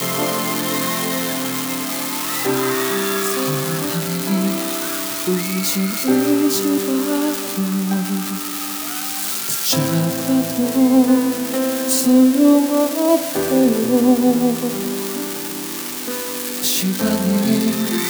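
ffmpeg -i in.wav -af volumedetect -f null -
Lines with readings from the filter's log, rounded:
mean_volume: -18.3 dB
max_volume: -2.8 dB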